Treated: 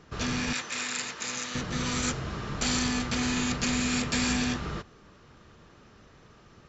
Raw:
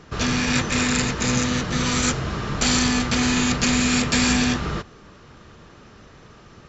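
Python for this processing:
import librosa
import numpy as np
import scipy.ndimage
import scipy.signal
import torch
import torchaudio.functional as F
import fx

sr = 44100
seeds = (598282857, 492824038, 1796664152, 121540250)

y = fx.highpass(x, sr, hz=1100.0, slope=6, at=(0.53, 1.55))
y = F.gain(torch.from_numpy(y), -8.0).numpy()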